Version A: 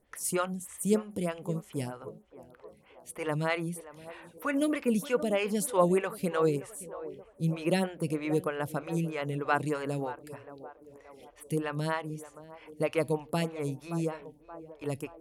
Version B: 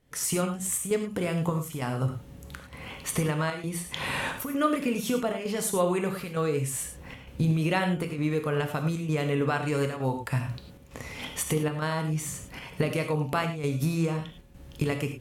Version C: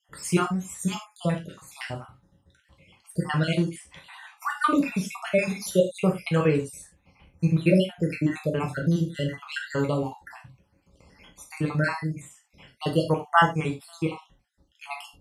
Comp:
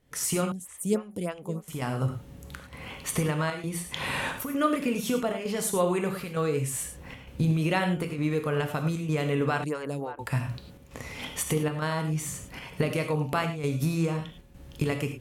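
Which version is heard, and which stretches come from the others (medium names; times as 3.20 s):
B
0.52–1.68 s: from A
9.64–10.19 s: from A
not used: C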